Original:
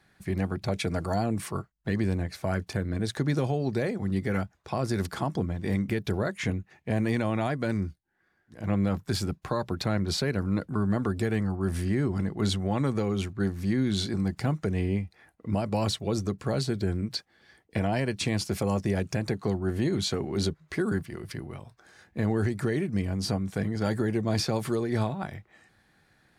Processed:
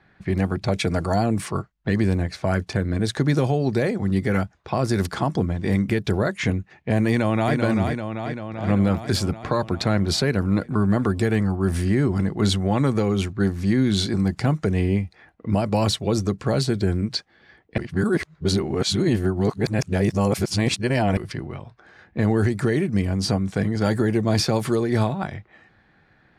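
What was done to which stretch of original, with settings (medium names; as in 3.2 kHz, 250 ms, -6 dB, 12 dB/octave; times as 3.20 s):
7.08–7.55 s: echo throw 390 ms, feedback 70%, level -5 dB
17.78–21.17 s: reverse
whole clip: level-controlled noise filter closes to 2.7 kHz, open at -23.5 dBFS; trim +6.5 dB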